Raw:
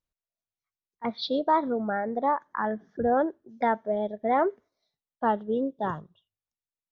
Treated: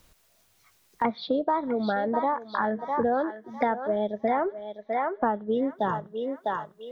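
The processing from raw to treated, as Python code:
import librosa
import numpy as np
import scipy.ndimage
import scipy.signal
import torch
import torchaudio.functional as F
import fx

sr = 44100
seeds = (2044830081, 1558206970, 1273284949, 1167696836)

y = fx.lowpass(x, sr, hz=fx.line((4.14, 3500.0), (5.49, 1900.0)), slope=24, at=(4.14, 5.49), fade=0.02)
y = fx.echo_thinned(y, sr, ms=653, feedback_pct=24, hz=850.0, wet_db=-7.5)
y = fx.band_squash(y, sr, depth_pct=100)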